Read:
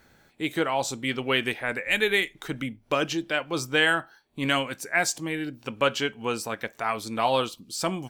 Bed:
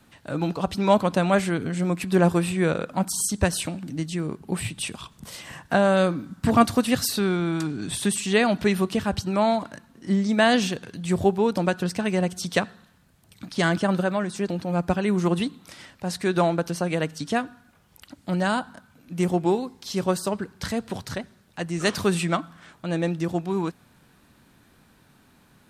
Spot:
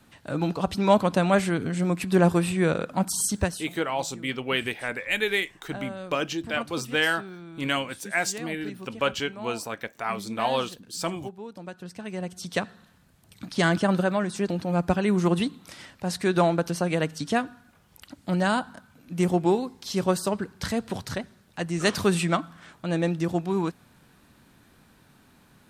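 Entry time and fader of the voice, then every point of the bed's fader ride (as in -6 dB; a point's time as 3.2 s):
3.20 s, -2.0 dB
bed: 3.37 s -0.5 dB
3.77 s -18 dB
11.55 s -18 dB
12.91 s 0 dB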